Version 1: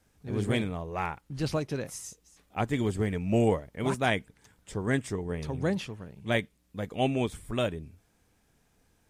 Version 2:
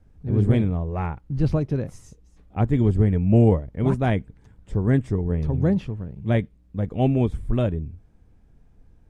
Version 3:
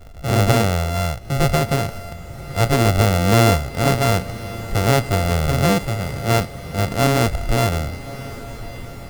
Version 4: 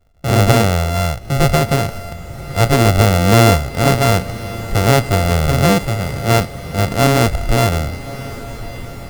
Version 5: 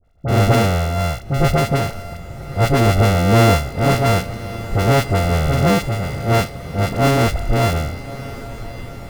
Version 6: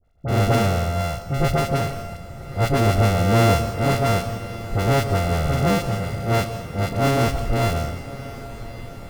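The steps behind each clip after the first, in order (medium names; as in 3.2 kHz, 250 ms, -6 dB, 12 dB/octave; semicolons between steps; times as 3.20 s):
tilt EQ -4 dB/octave
sorted samples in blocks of 64 samples; power-law waveshaper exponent 0.7; echo that smears into a reverb 1157 ms, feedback 52%, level -15 dB
gate with hold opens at -28 dBFS; trim +4 dB
treble shelf 4.3 kHz -5 dB; phase dispersion highs, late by 44 ms, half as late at 1.4 kHz; trim -2 dB
plate-style reverb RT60 0.81 s, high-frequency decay 0.9×, pre-delay 120 ms, DRR 10 dB; trim -4.5 dB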